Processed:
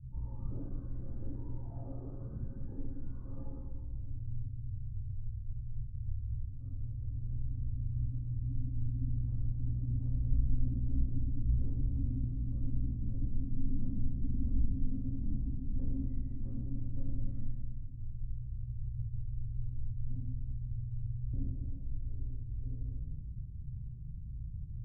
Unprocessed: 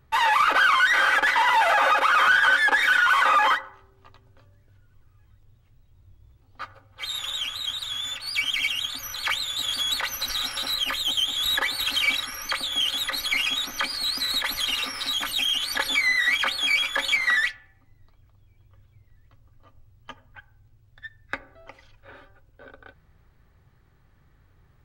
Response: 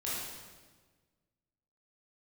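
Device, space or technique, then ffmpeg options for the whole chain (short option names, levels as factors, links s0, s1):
club heard from the street: -filter_complex "[0:a]alimiter=limit=0.188:level=0:latency=1,lowpass=f=180:w=0.5412,lowpass=f=180:w=1.3066[s0];[1:a]atrim=start_sample=2205[s1];[s0][s1]afir=irnorm=-1:irlink=0,volume=3.98"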